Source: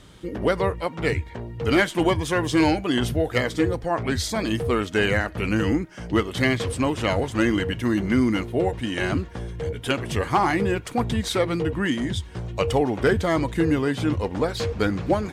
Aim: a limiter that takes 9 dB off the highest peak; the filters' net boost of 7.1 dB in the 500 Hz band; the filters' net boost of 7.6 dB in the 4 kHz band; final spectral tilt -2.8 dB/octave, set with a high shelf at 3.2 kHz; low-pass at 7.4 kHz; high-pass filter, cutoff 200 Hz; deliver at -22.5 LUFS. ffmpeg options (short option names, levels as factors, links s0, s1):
-af "highpass=200,lowpass=7400,equalizer=f=500:t=o:g=8.5,highshelf=f=3200:g=7.5,equalizer=f=4000:t=o:g=5,volume=0.944,alimiter=limit=0.282:level=0:latency=1"